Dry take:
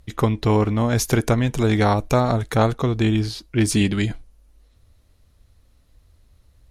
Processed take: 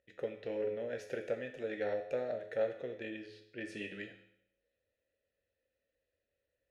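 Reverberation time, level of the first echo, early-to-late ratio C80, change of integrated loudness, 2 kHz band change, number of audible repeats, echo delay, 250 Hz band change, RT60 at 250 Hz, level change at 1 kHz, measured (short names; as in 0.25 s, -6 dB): 0.70 s, none, 11.5 dB, -19.0 dB, -16.0 dB, none, none, -25.5 dB, 0.75 s, -26.0 dB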